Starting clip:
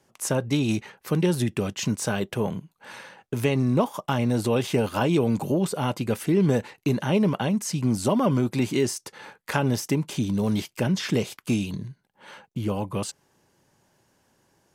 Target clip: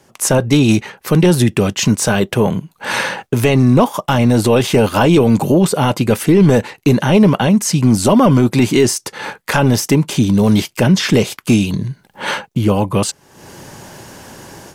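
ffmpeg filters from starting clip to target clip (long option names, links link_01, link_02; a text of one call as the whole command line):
ffmpeg -i in.wav -af "apsyclip=16.5dB,dynaudnorm=framelen=150:gausssize=3:maxgain=16dB,volume=-3dB" out.wav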